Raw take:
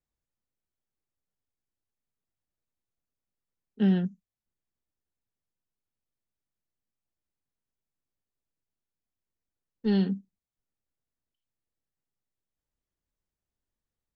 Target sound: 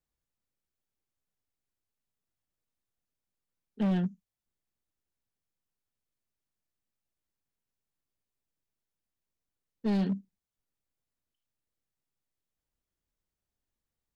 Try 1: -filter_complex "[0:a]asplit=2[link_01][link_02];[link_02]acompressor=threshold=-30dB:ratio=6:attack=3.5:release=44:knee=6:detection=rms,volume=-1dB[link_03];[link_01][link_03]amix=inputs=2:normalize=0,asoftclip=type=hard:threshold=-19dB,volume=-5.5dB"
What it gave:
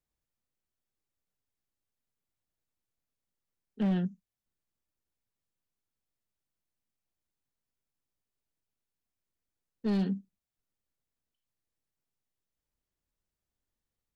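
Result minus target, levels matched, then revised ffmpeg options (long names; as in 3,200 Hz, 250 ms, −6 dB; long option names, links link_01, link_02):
downward compressor: peak gain reduction +7 dB
-filter_complex "[0:a]asplit=2[link_01][link_02];[link_02]acompressor=threshold=-21dB:ratio=6:attack=3.5:release=44:knee=6:detection=rms,volume=-1dB[link_03];[link_01][link_03]amix=inputs=2:normalize=0,asoftclip=type=hard:threshold=-19dB,volume=-5.5dB"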